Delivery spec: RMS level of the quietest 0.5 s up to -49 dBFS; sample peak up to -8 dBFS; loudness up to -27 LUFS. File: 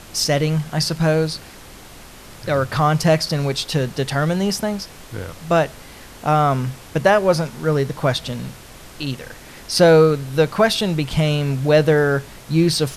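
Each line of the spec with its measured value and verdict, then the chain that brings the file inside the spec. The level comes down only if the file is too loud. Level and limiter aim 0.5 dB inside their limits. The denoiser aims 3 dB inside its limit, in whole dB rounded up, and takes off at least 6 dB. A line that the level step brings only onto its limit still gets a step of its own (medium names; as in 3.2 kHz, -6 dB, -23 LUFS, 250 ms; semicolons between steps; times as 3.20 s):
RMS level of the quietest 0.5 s -40 dBFS: fail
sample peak -2.5 dBFS: fail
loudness -19.0 LUFS: fail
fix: noise reduction 6 dB, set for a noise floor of -40 dBFS; trim -8.5 dB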